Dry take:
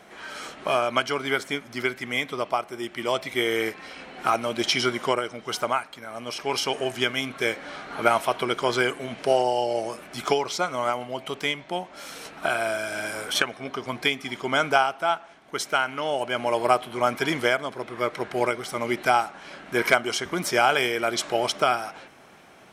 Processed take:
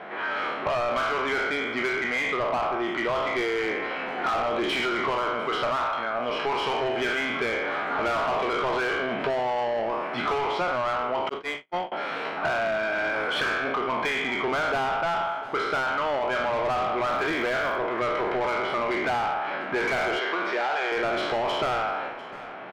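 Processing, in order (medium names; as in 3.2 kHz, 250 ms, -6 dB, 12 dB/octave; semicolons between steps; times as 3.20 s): spectral sustain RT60 0.77 s; distance through air 410 m; overdrive pedal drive 28 dB, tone 2.2 kHz, clips at -4.5 dBFS; 17.07–17.75 s: crackle 250 per s -30 dBFS; delay 698 ms -23 dB; 11.29–11.92 s: gate -15 dBFS, range -48 dB; 20.19–20.92 s: band-pass 420–5200 Hz; compression, threshold -17 dBFS, peak gain reduction 7 dB; trim -7 dB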